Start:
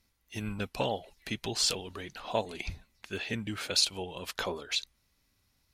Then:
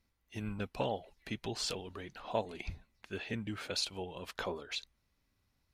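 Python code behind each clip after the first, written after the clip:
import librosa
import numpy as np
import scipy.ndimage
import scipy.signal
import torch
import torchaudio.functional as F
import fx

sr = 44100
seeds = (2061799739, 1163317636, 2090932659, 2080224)

y = fx.high_shelf(x, sr, hz=3100.0, db=-9.0)
y = y * librosa.db_to_amplitude(-3.0)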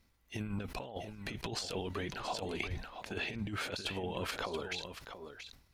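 y = fx.over_compress(x, sr, threshold_db=-41.0, ratio=-0.5)
y = y + 10.0 ** (-9.5 / 20.0) * np.pad(y, (int(680 * sr / 1000.0), 0))[:len(y)]
y = fx.sustainer(y, sr, db_per_s=94.0)
y = y * librosa.db_to_amplitude(3.0)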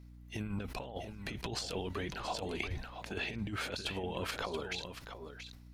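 y = fx.add_hum(x, sr, base_hz=60, snr_db=13)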